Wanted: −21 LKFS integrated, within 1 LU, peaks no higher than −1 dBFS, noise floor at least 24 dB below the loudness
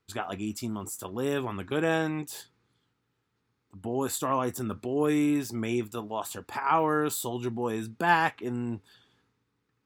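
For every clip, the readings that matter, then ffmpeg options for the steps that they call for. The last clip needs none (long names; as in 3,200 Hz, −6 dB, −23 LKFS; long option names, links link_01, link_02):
integrated loudness −29.5 LKFS; sample peak −8.5 dBFS; target loudness −21.0 LKFS
→ -af "volume=8.5dB,alimiter=limit=-1dB:level=0:latency=1"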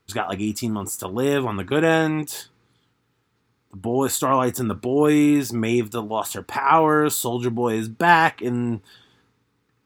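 integrated loudness −21.0 LKFS; sample peak −1.0 dBFS; background noise floor −69 dBFS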